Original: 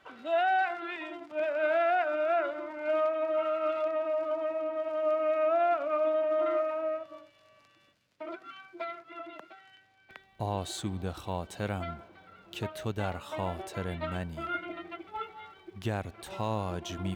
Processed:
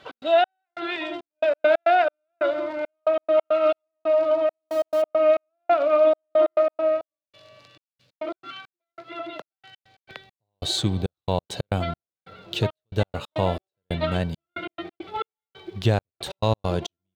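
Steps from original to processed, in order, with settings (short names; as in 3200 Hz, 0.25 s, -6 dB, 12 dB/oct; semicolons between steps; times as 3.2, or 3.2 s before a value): 4.49–5.02 switching spikes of -40 dBFS; graphic EQ 125/500/4000 Hz +10/+8/+11 dB; step gate "x.xx...xxxx..x." 137 bpm -60 dB; gain +5 dB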